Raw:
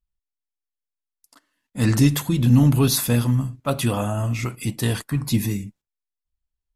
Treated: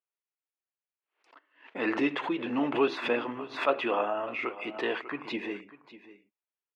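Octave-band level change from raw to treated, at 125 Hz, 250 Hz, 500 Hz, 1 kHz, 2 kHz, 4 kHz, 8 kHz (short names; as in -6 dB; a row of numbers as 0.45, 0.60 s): -33.5 dB, -11.0 dB, -0.5 dB, +0.5 dB, +0.5 dB, -9.5 dB, under -30 dB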